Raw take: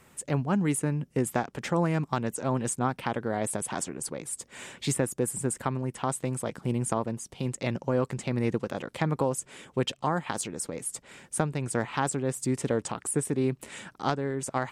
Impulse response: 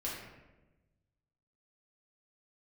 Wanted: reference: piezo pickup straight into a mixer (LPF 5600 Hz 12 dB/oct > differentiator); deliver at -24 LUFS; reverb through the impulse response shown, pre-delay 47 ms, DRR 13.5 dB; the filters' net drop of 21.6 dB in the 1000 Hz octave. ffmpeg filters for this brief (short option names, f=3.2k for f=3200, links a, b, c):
-filter_complex "[0:a]equalizer=f=1k:t=o:g=-5.5,asplit=2[a][b];[1:a]atrim=start_sample=2205,adelay=47[c];[b][c]afir=irnorm=-1:irlink=0,volume=-16dB[d];[a][d]amix=inputs=2:normalize=0,lowpass=5.6k,aderivative,volume=21.5dB"